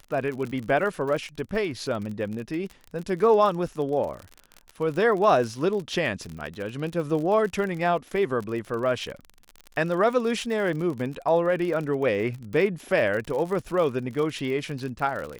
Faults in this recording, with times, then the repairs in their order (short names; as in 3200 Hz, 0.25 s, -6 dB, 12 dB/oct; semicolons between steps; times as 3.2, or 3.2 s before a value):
crackle 48/s -31 dBFS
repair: de-click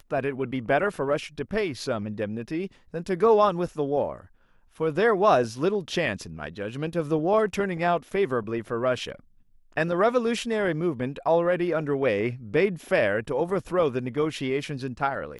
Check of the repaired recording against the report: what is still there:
none